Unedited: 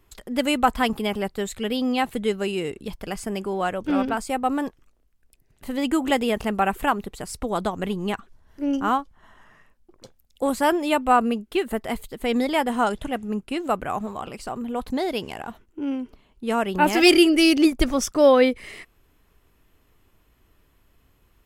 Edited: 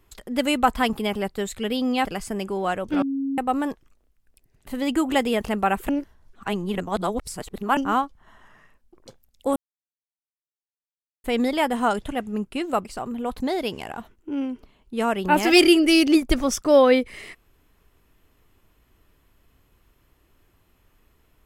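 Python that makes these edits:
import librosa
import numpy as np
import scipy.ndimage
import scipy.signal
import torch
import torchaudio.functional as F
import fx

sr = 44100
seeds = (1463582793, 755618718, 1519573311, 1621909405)

y = fx.edit(x, sr, fx.cut(start_s=2.05, length_s=0.96),
    fx.bleep(start_s=3.98, length_s=0.36, hz=273.0, db=-23.0),
    fx.reverse_span(start_s=6.85, length_s=1.88),
    fx.silence(start_s=10.52, length_s=1.68),
    fx.cut(start_s=13.81, length_s=0.54), tone=tone)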